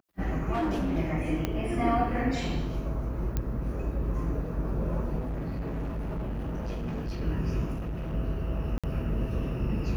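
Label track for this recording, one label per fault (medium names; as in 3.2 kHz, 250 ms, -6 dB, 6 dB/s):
0.530000	0.970000	clipped -24.5 dBFS
1.450000	1.450000	pop -14 dBFS
3.370000	3.370000	pop -16 dBFS
5.190000	7.220000	clipped -29.5 dBFS
7.730000	8.150000	clipped -30.5 dBFS
8.780000	8.840000	dropout 56 ms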